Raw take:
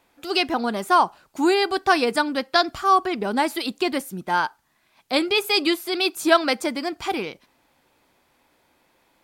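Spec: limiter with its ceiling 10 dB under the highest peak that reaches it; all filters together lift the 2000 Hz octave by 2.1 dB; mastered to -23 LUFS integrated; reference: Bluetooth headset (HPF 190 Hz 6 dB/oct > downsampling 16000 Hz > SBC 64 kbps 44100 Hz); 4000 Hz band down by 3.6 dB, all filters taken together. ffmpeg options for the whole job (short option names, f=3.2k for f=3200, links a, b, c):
-af "equalizer=f=2k:t=o:g=4.5,equalizer=f=4k:t=o:g=-6,alimiter=limit=-12dB:level=0:latency=1,highpass=f=190:p=1,aresample=16000,aresample=44100,volume=1.5dB" -ar 44100 -c:a sbc -b:a 64k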